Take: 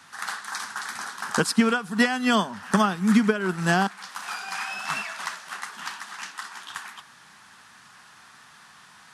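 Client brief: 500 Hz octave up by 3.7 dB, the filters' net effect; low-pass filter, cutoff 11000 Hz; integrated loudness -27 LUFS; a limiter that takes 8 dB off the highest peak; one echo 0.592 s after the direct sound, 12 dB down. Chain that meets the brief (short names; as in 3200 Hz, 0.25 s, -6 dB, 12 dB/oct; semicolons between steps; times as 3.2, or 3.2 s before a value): LPF 11000 Hz; bell 500 Hz +4.5 dB; limiter -14 dBFS; echo 0.592 s -12 dB; gain +0.5 dB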